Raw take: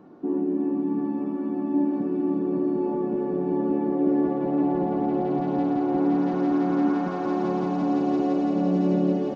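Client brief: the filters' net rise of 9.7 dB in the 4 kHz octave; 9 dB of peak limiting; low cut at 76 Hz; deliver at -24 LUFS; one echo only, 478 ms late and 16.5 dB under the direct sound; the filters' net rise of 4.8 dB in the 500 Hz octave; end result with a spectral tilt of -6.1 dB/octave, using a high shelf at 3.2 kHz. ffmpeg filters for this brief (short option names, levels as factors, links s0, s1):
-af "highpass=76,equalizer=f=500:t=o:g=7,highshelf=f=3200:g=6.5,equalizer=f=4000:t=o:g=8,alimiter=limit=0.141:level=0:latency=1,aecho=1:1:478:0.15,volume=1.12"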